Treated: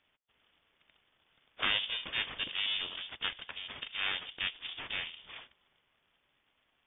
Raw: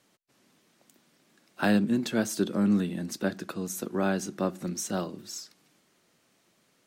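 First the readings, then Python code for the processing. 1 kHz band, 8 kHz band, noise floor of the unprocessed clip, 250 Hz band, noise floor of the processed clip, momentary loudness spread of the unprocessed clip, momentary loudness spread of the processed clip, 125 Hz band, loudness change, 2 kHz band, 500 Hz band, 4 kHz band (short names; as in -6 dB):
-8.0 dB, under -40 dB, -69 dBFS, -29.5 dB, -77 dBFS, 12 LU, 11 LU, -24.0 dB, -5.5 dB, +1.0 dB, -21.0 dB, +9.5 dB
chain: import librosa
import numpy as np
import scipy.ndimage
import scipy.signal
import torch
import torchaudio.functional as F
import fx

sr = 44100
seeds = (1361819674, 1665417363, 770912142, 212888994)

y = np.abs(x)
y = fx.freq_invert(y, sr, carrier_hz=3500)
y = fx.spec_gate(y, sr, threshold_db=-15, keep='weak')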